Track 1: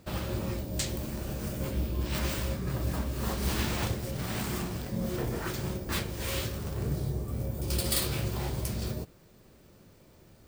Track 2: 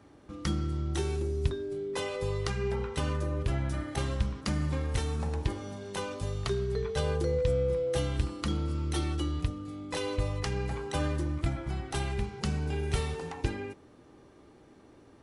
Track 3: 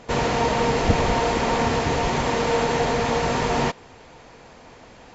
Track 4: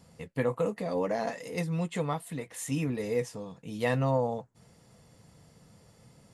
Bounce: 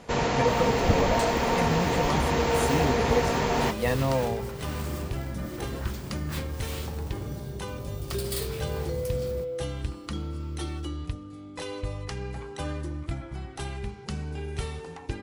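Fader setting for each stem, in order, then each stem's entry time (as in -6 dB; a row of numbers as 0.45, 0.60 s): -5.0, -2.5, -3.5, +1.0 dB; 0.40, 1.65, 0.00, 0.00 s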